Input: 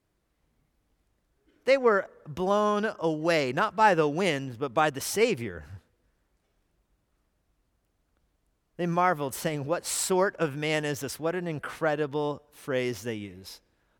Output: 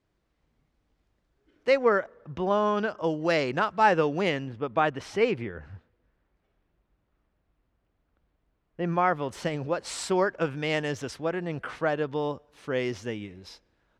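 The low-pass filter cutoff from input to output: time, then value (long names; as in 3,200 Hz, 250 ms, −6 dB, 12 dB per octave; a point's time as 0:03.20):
0:01.96 5,600 Hz
0:02.42 3,300 Hz
0:03.17 5,700 Hz
0:03.89 5,700 Hz
0:04.73 3,000 Hz
0:08.87 3,000 Hz
0:09.48 5,500 Hz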